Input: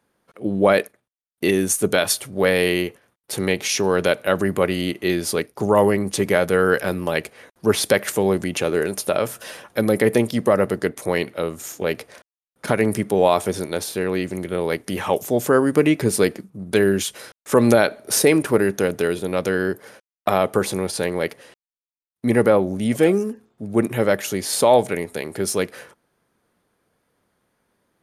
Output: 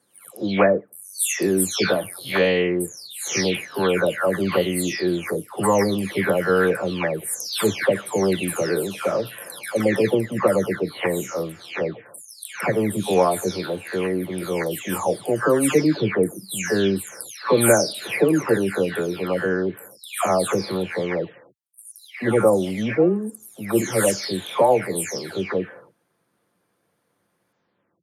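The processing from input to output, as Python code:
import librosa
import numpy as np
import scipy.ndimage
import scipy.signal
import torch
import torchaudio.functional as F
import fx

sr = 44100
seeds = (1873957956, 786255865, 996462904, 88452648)

y = fx.spec_delay(x, sr, highs='early', ms=499)
y = scipy.signal.sosfilt(scipy.signal.butter(2, 91.0, 'highpass', fs=sr, output='sos'), y)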